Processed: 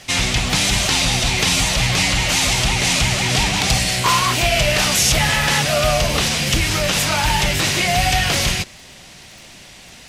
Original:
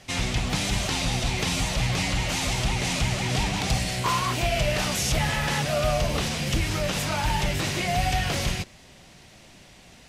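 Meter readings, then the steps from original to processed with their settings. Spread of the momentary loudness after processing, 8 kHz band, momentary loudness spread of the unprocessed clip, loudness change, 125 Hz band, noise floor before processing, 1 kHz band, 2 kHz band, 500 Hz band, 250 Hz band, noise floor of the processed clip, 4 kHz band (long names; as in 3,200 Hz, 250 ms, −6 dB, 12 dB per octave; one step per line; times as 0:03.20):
2 LU, +12.0 dB, 2 LU, +9.0 dB, +5.0 dB, −51 dBFS, +7.5 dB, +10.5 dB, +6.5 dB, +5.0 dB, −42 dBFS, +11.5 dB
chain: tilt shelving filter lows −3.5 dB, about 1,200 Hz
surface crackle 30 per second −42 dBFS
level +8.5 dB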